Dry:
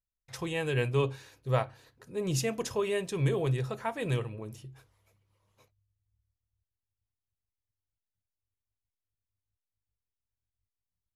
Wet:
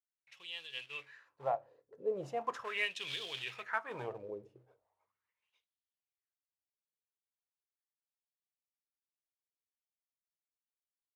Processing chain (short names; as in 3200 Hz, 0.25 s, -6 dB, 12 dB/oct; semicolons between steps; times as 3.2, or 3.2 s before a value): Doppler pass-by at 3.18, 16 m/s, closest 11 m; short-mantissa float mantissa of 2-bit; wah 0.39 Hz 450–3400 Hz, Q 4.4; noise-modulated level, depth 60%; gain +14.5 dB